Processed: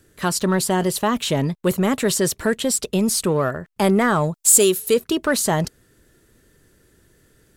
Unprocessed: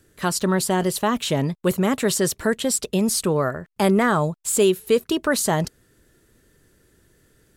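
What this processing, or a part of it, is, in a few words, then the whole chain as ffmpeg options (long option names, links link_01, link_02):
parallel distortion: -filter_complex "[0:a]asplit=2[link_01][link_02];[link_02]asoftclip=type=hard:threshold=-22.5dB,volume=-11.5dB[link_03];[link_01][link_03]amix=inputs=2:normalize=0,asettb=1/sr,asplit=3[link_04][link_05][link_06];[link_04]atrim=end=4.344[link_07];[link_05]atrim=start=4.34:end=4.94,asetpts=PTS-STARTPTS,afade=type=in:duration=0.004:curve=qsin,afade=type=out:start_time=0.596:duration=0.004:curve=qsin,bass=frequency=250:gain=-3,treble=frequency=4000:gain=10[link_08];[link_06]atrim=start=4.936[link_09];[link_07][link_08]acrossfade=duration=0.004:curve1=hsin:curve2=qsin[link_10];[link_10][link_09]acrossfade=duration=0.004:curve1=qsin:curve2=hsin"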